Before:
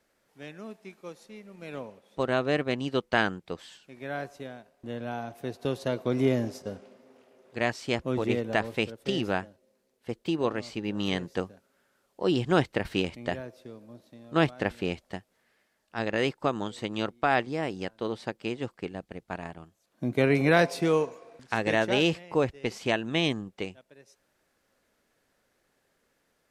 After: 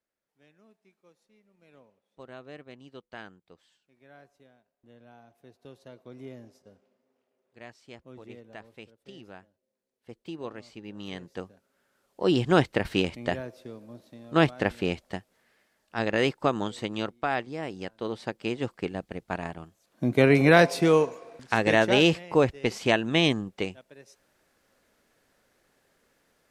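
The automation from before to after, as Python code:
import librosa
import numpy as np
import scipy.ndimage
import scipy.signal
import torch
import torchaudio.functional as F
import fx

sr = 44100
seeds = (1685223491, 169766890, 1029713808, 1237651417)

y = fx.gain(x, sr, db=fx.line((9.39, -18.5), (10.19, -10.0), (11.06, -10.0), (12.31, 2.5), (16.7, 2.5), (17.44, -5.0), (18.77, 4.0)))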